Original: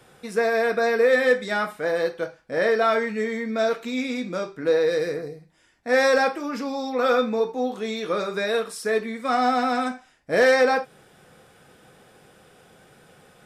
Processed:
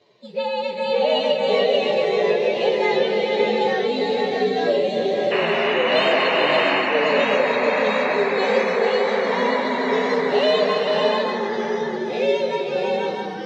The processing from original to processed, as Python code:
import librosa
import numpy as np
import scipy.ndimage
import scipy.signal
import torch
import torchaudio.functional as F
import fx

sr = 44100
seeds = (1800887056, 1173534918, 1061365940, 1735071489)

y = fx.partial_stretch(x, sr, pct=125)
y = fx.spec_paint(y, sr, seeds[0], shape='noise', start_s=5.31, length_s=1.49, low_hz=530.0, high_hz=3000.0, level_db=-21.0)
y = fx.echo_multitap(y, sr, ms=(285, 440, 577, 701), db=(-8.5, -6.0, -4.5, -12.5))
y = fx.echo_pitch(y, sr, ms=515, semitones=-2, count=3, db_per_echo=-3.0)
y = fx.cabinet(y, sr, low_hz=200.0, low_slope=12, high_hz=5100.0, hz=(410.0, 1400.0, 2400.0, 4000.0), db=(8, -8, -4, 9))
y = F.gain(torch.from_numpy(y), -1.5).numpy()